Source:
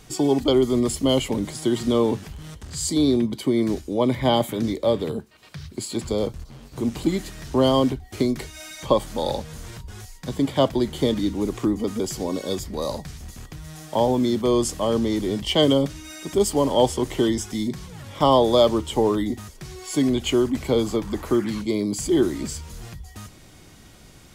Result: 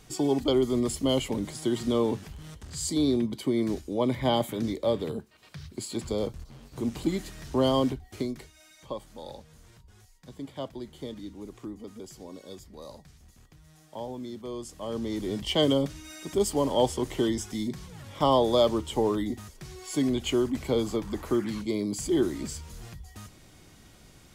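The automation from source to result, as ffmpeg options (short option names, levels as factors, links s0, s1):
-af "volume=2,afade=t=out:st=7.9:d=0.66:silence=0.266073,afade=t=in:st=14.69:d=0.72:silence=0.266073"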